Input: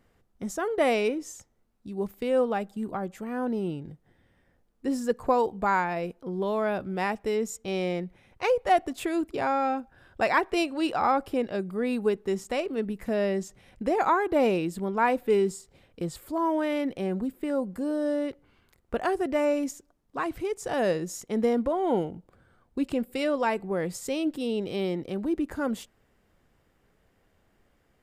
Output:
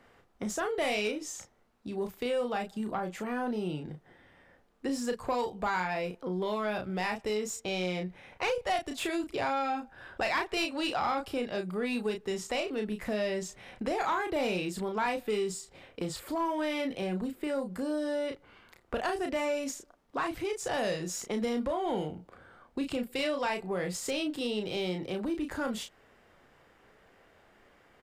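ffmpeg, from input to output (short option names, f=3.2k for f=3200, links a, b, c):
-filter_complex "[0:a]asplit=2[a][b];[b]adelay=33,volume=-6dB[c];[a][c]amix=inputs=2:normalize=0,acrossover=split=160|3000[d][e][f];[e]acompressor=threshold=-40dB:ratio=3[g];[d][g][f]amix=inputs=3:normalize=0,asplit=2[h][i];[i]highpass=f=720:p=1,volume=14dB,asoftclip=type=tanh:threshold=-20.5dB[j];[h][j]amix=inputs=2:normalize=0,lowpass=f=2.5k:p=1,volume=-6dB,volume=2dB"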